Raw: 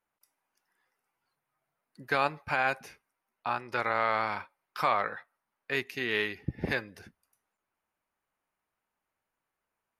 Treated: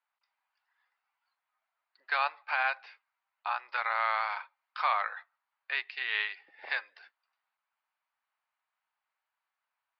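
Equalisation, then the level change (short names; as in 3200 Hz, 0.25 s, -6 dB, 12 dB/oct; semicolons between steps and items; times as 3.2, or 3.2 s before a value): HPF 780 Hz 24 dB/oct; steep low-pass 4800 Hz 72 dB/oct; 0.0 dB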